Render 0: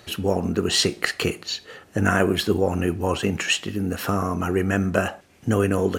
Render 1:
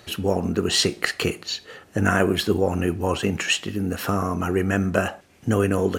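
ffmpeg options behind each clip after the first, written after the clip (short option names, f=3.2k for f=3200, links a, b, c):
-af anull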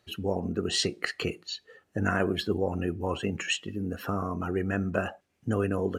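-af "afftdn=nr=13:nf=-33,volume=-7dB"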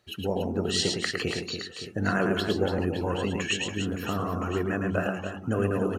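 -af "aecho=1:1:110|286|567.6|1018|1739:0.631|0.398|0.251|0.158|0.1"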